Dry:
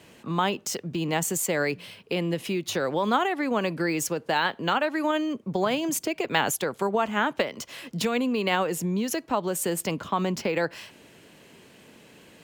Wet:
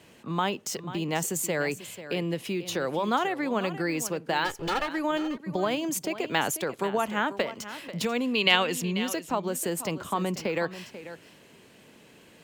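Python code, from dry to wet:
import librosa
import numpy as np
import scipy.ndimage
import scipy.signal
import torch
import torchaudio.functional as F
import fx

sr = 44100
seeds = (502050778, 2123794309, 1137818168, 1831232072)

y = fx.lower_of_two(x, sr, delay_ms=2.3, at=(4.44, 4.87), fade=0.02)
y = fx.peak_eq(y, sr, hz=3200.0, db=13.0, octaves=1.5, at=(8.35, 8.93))
y = y + 10.0 ** (-13.5 / 20.0) * np.pad(y, (int(490 * sr / 1000.0), 0))[:len(y)]
y = y * 10.0 ** (-2.5 / 20.0)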